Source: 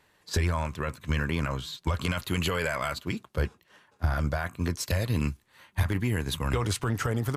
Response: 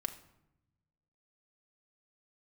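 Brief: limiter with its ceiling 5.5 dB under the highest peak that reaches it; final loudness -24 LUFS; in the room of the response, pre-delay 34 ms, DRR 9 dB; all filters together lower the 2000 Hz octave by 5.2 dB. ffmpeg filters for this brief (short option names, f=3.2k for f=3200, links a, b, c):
-filter_complex "[0:a]equalizer=f=2k:t=o:g=-7,alimiter=limit=-22dB:level=0:latency=1,asplit=2[a][b];[1:a]atrim=start_sample=2205,adelay=34[c];[b][c]afir=irnorm=-1:irlink=0,volume=-9dB[d];[a][d]amix=inputs=2:normalize=0,volume=9dB"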